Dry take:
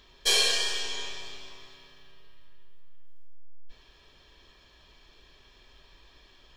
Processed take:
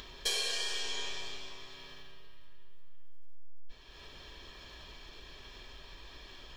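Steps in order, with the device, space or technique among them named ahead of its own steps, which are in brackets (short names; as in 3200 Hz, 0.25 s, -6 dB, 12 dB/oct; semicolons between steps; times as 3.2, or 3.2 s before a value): upward and downward compression (upward compressor, threshold -41 dBFS; compressor 5:1, threshold -31 dBFS, peak gain reduction 11 dB)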